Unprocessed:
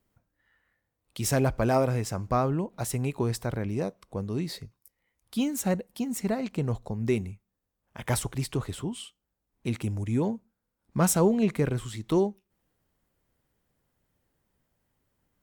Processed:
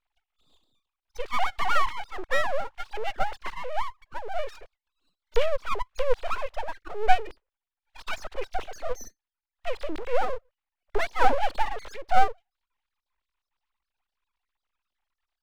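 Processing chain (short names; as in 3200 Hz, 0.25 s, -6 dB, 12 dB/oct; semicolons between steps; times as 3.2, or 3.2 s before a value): sine-wave speech; full-wave rectifier; gain +5 dB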